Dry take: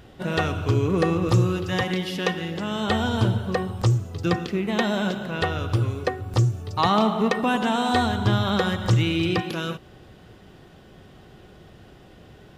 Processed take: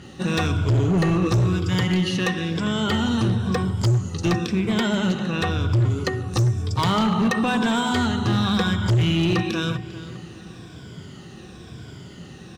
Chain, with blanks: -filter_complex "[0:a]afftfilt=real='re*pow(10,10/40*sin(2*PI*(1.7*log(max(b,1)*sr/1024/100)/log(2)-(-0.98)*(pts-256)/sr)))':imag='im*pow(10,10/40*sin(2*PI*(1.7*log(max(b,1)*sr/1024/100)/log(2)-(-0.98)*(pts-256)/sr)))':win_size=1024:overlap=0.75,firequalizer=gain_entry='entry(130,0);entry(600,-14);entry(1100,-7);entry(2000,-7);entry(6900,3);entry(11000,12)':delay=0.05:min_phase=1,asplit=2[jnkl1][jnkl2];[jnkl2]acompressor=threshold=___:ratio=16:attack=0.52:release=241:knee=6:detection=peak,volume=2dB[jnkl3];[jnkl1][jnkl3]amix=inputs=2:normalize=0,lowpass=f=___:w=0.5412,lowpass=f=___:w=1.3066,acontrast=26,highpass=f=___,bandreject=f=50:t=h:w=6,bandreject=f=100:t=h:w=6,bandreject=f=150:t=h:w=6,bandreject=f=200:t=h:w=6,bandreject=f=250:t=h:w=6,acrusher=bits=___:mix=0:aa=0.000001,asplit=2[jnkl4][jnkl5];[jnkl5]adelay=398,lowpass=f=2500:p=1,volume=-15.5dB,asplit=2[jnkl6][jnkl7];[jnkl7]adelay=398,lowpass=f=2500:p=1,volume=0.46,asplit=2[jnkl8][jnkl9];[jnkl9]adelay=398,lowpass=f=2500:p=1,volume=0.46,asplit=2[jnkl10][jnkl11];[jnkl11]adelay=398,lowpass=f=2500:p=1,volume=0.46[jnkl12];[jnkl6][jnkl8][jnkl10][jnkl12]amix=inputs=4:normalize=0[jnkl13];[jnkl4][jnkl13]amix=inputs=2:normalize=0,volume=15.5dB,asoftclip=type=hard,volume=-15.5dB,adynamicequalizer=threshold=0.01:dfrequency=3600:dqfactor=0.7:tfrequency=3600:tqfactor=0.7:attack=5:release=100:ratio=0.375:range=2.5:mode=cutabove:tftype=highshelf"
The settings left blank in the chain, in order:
-31dB, 7200, 7200, 98, 11